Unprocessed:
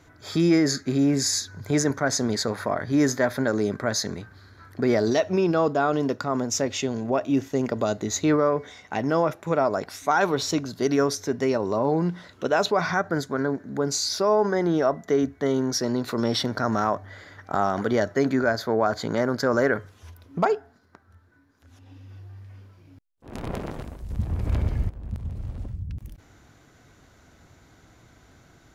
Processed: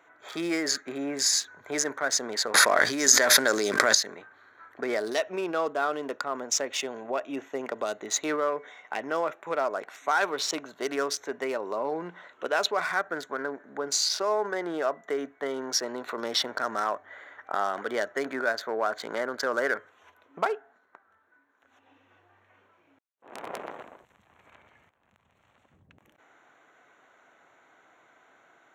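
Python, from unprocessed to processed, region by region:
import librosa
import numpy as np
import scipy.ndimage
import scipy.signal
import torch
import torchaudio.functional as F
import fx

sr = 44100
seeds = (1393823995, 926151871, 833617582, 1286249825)

y = fx.chain(x, sr, fx.peak_eq(hz=7200.0, db=10.0, octaves=1.6),
    fx.env_flatten(amount_pct=100), at=(2.54, 3.95))
y = fx.chain(y, sr, fx.tone_stack(knobs='5-5-5'),
    fx.band_squash(depth_pct=70), at=(24.05, 25.72))
y = fx.wiener(y, sr, points=9)
y = scipy.signal.sosfilt(scipy.signal.butter(2, 640.0, 'highpass', fs=sr, output='sos'), y)
y = fx.dynamic_eq(y, sr, hz=830.0, q=1.1, threshold_db=-37.0, ratio=4.0, max_db=-6)
y = y * 10.0 ** (2.0 / 20.0)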